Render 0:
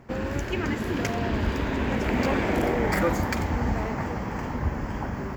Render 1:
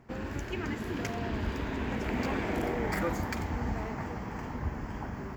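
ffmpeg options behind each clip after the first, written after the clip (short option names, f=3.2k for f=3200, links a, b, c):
-af "bandreject=f=550:w=12,volume=-7dB"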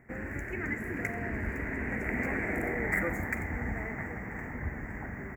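-af "firequalizer=gain_entry='entry(700,0);entry(1000,-6);entry(2000,13);entry(3300,-28);entry(7800,2)':delay=0.05:min_phase=1,volume=-2dB"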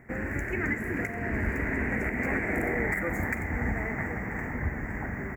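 -af "alimiter=limit=-23.5dB:level=0:latency=1:release=336,volume=5.5dB"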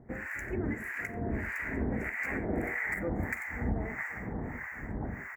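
-filter_complex "[0:a]acrossover=split=960[a][b];[a]aeval=exprs='val(0)*(1-1/2+1/2*cos(2*PI*1.6*n/s))':c=same[c];[b]aeval=exprs='val(0)*(1-1/2-1/2*cos(2*PI*1.6*n/s))':c=same[d];[c][d]amix=inputs=2:normalize=0"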